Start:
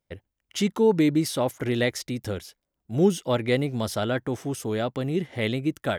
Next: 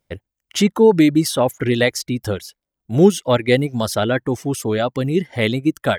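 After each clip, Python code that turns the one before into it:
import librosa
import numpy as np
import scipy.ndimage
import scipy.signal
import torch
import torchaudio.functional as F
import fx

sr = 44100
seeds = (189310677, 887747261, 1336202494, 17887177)

y = fx.dereverb_blind(x, sr, rt60_s=0.87)
y = F.gain(torch.from_numpy(y), 8.5).numpy()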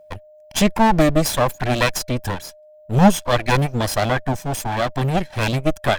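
y = fx.lower_of_two(x, sr, delay_ms=1.2)
y = y + 10.0 ** (-47.0 / 20.0) * np.sin(2.0 * np.pi * 610.0 * np.arange(len(y)) / sr)
y = F.gain(torch.from_numpy(y), 2.5).numpy()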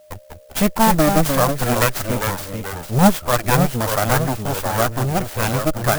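y = fx.echo_pitch(x, sr, ms=181, semitones=-2, count=2, db_per_echo=-6.0)
y = fx.dynamic_eq(y, sr, hz=1300.0, q=2.5, threshold_db=-36.0, ratio=4.0, max_db=6)
y = fx.clock_jitter(y, sr, seeds[0], jitter_ms=0.063)
y = F.gain(torch.from_numpy(y), -1.0).numpy()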